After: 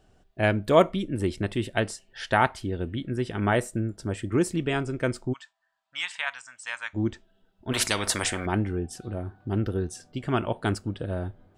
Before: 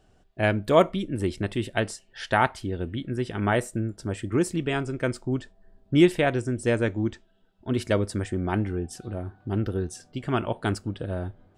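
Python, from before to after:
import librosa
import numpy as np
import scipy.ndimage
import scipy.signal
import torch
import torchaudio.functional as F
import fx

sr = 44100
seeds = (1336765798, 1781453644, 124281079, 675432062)

y = fx.ellip_bandpass(x, sr, low_hz=960.0, high_hz=7900.0, order=3, stop_db=40, at=(5.32, 6.93), fade=0.02)
y = fx.spectral_comp(y, sr, ratio=4.0, at=(7.71, 8.45), fade=0.02)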